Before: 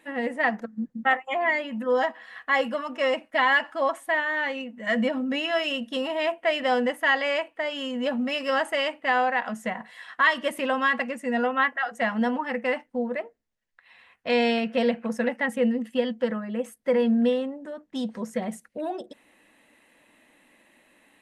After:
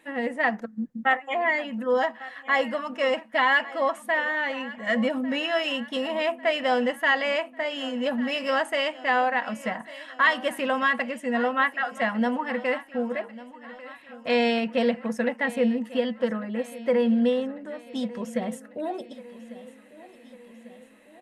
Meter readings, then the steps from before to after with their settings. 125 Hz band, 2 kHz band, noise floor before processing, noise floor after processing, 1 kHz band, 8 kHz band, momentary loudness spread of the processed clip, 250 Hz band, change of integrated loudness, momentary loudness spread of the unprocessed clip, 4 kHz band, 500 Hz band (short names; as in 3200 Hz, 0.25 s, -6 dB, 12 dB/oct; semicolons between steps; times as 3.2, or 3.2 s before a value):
n/a, 0.0 dB, -65 dBFS, -50 dBFS, 0.0 dB, 0.0 dB, 12 LU, 0.0 dB, 0.0 dB, 10 LU, 0.0 dB, 0.0 dB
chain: feedback echo 1.147 s, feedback 57%, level -18 dB